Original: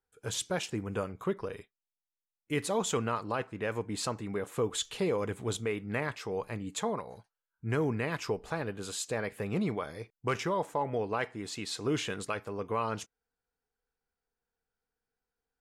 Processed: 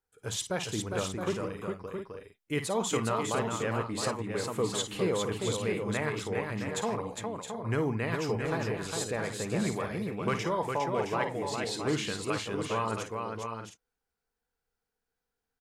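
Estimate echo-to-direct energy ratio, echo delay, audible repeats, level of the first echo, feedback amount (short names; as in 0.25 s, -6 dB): -1.5 dB, 54 ms, 4, -9.0 dB, no steady repeat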